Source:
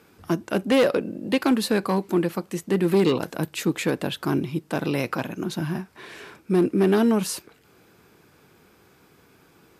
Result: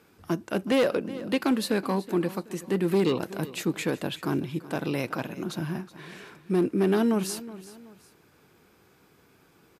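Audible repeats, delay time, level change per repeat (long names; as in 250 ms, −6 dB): 2, 374 ms, −8.5 dB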